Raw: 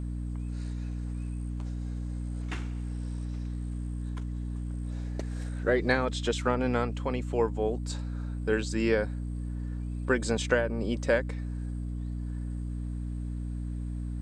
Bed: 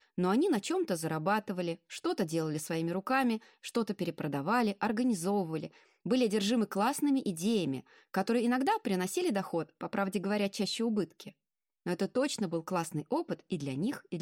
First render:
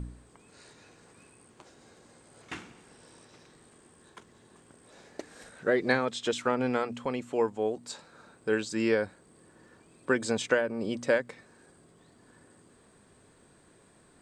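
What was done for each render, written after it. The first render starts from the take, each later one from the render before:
hum removal 60 Hz, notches 5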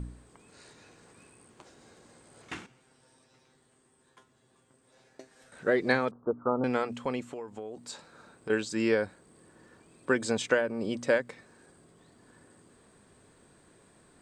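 0:02.66–0:05.52: tuned comb filter 130 Hz, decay 0.21 s, mix 90%
0:06.11–0:06.64: Butterworth low-pass 1,300 Hz 72 dB per octave
0:07.23–0:08.50: downward compressor 12 to 1, threshold −35 dBFS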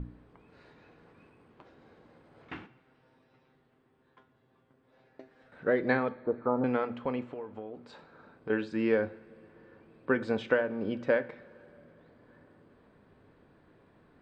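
high-frequency loss of the air 360 metres
coupled-rooms reverb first 0.43 s, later 4.4 s, from −22 dB, DRR 11.5 dB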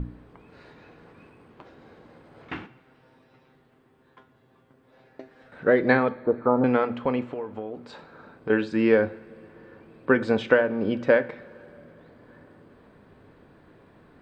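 level +7.5 dB

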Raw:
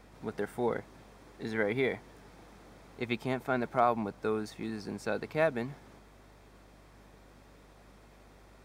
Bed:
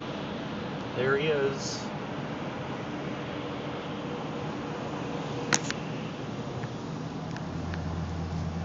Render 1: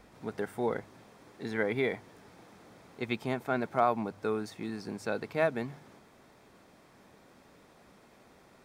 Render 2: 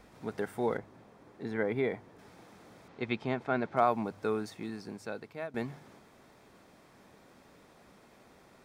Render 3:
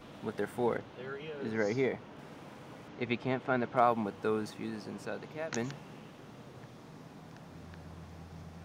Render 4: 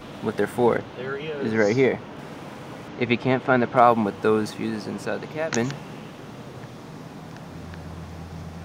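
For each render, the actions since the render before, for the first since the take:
hum removal 50 Hz, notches 3
0:00.77–0:02.19: high-shelf EQ 2,100 Hz −10 dB; 0:02.88–0:03.77: low-pass filter 4,400 Hz; 0:04.39–0:05.54: fade out, to −15 dB
mix in bed −16 dB
level +11.5 dB; brickwall limiter −3 dBFS, peak gain reduction 1.5 dB

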